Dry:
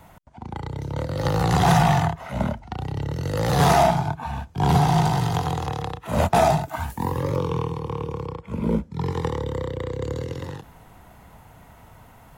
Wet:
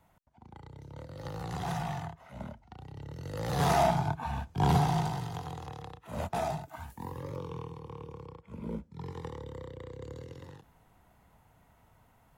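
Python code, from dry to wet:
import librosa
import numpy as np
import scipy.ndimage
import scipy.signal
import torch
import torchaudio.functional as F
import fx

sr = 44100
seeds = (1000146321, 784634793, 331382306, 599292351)

y = fx.gain(x, sr, db=fx.line((2.88, -17.5), (4.12, -5.0), (4.62, -5.0), (5.29, -15.0)))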